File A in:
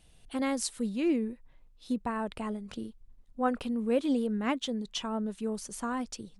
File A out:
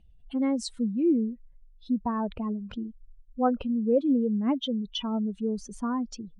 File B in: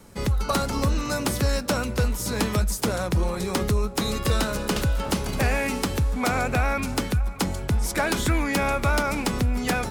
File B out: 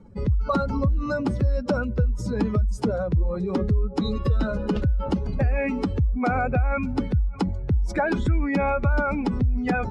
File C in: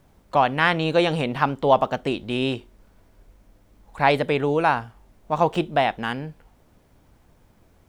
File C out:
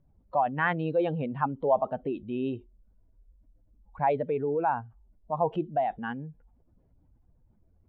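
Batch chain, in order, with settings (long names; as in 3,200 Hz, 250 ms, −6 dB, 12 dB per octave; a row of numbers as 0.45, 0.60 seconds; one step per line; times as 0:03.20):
expanding power law on the bin magnitudes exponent 1.9
high-frequency loss of the air 100 metres
normalise the peak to −12 dBFS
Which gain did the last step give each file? +4.5, +1.5, −6.0 decibels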